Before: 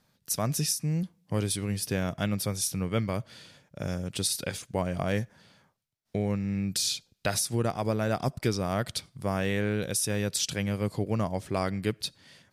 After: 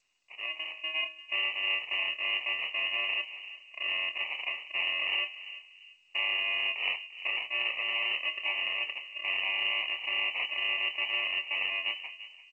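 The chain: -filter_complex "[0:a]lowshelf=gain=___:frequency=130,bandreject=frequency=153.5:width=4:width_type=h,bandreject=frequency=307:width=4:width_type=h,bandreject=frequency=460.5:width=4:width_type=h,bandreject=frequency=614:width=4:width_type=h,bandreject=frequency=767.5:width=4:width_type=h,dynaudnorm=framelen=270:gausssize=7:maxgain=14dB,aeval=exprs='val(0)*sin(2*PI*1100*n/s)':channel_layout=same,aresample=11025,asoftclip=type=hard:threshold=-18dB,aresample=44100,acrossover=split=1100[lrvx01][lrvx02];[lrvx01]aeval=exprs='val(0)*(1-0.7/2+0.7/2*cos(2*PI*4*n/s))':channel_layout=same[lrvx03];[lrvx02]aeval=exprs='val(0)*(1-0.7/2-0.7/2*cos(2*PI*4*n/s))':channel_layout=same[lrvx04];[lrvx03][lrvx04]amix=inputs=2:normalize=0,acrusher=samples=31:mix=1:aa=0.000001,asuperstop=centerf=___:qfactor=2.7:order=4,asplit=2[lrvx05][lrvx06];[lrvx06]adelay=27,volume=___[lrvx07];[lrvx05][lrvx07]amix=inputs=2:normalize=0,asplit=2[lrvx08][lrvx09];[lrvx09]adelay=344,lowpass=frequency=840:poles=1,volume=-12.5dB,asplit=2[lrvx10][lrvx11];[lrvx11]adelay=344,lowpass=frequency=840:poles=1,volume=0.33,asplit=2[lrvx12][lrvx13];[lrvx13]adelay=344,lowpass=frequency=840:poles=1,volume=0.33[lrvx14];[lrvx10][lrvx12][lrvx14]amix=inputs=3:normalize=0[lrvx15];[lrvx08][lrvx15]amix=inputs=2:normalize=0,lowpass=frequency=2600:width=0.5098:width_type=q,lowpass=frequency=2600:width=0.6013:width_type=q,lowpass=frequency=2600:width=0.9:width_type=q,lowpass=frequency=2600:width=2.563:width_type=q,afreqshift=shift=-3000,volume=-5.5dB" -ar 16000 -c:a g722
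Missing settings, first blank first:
7.5, 1500, -9.5dB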